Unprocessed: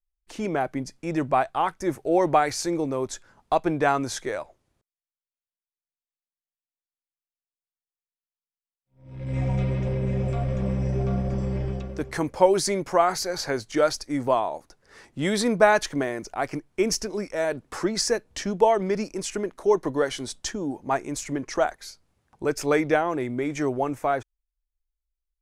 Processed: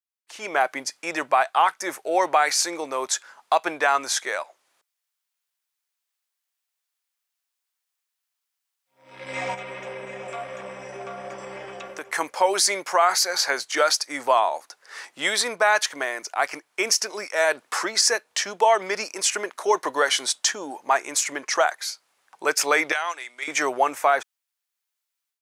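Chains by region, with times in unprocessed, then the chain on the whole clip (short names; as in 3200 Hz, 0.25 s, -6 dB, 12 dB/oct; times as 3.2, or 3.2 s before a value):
9.54–12.18 bell 4500 Hz -8.5 dB 0.62 oct + compressor 4:1, threshold -29 dBFS
22.92–23.48 weighting filter ITU-R 468 + gate -29 dBFS, range -13 dB + compressor 10:1, threshold -29 dBFS
whole clip: HPF 930 Hz 12 dB/oct; AGC gain up to 15.5 dB; maximiser +5.5 dB; gain -7 dB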